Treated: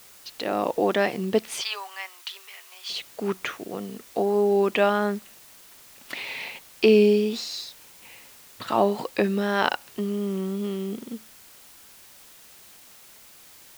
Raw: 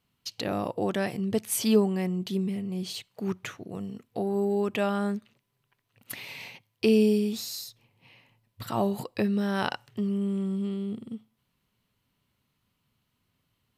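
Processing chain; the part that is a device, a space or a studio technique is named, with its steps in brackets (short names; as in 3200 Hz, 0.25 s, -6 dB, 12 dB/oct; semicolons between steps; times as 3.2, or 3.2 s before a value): dictaphone (BPF 300–4400 Hz; AGC gain up to 9.5 dB; wow and flutter; white noise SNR 24 dB); 1.61–2.9 HPF 990 Hz 24 dB/oct; gain -1.5 dB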